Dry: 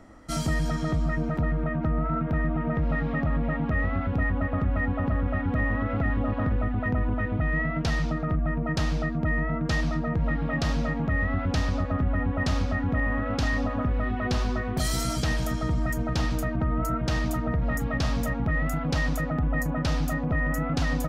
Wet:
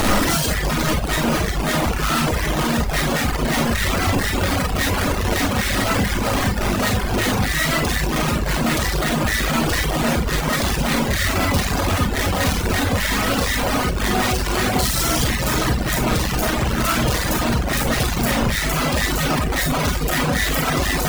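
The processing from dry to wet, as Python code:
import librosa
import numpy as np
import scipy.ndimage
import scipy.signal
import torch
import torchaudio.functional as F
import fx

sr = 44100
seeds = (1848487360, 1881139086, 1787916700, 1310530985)

y = np.sign(x) * np.sqrt(np.mean(np.square(x)))
y = fx.rev_schroeder(y, sr, rt60_s=0.42, comb_ms=31, drr_db=-0.5)
y = fx.dereverb_blind(y, sr, rt60_s=1.1)
y = F.gain(torch.from_numpy(y), 7.0).numpy()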